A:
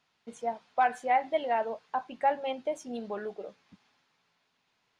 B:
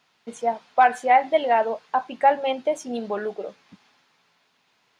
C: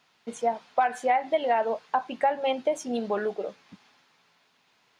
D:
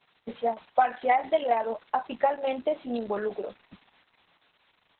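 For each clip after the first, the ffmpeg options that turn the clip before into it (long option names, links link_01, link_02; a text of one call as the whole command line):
ffmpeg -i in.wav -af "lowshelf=frequency=86:gain=-11.5,volume=9dB" out.wav
ffmpeg -i in.wav -af "acompressor=threshold=-20dB:ratio=6" out.wav
ffmpeg -i in.wav -ar 48000 -c:a libopus -b:a 6k out.opus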